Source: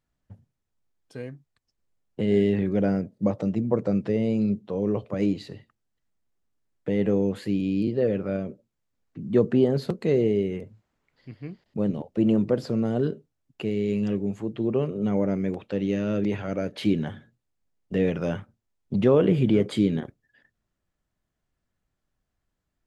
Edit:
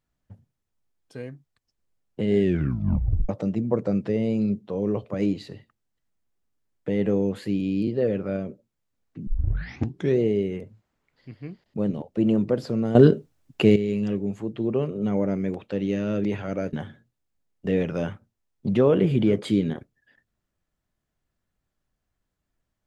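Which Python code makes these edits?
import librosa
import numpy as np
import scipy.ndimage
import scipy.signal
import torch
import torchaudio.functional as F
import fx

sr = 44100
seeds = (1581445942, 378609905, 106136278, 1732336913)

y = fx.edit(x, sr, fx.tape_stop(start_s=2.41, length_s=0.88),
    fx.tape_start(start_s=9.27, length_s=0.92),
    fx.clip_gain(start_s=12.95, length_s=0.81, db=11.5),
    fx.cut(start_s=16.73, length_s=0.27), tone=tone)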